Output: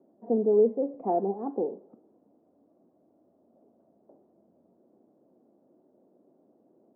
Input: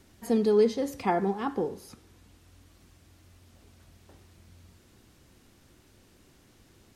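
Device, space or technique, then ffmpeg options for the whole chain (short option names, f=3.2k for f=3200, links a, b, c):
under water: -af "highpass=f=220:w=0.5412,highpass=f=220:w=1.3066,lowpass=f=710:w=0.5412,lowpass=f=710:w=1.3066,equalizer=f=630:t=o:w=0.41:g=7"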